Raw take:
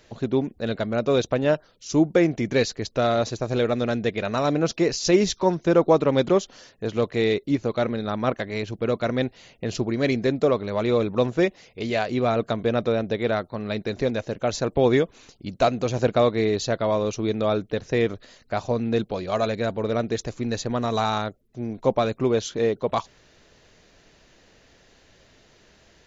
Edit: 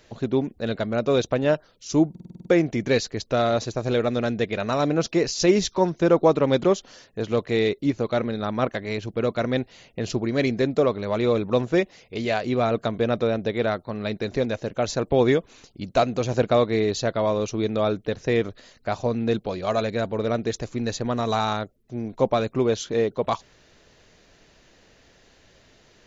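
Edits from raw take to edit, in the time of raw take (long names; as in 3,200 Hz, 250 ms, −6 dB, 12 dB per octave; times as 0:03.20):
0:02.10: stutter 0.05 s, 8 plays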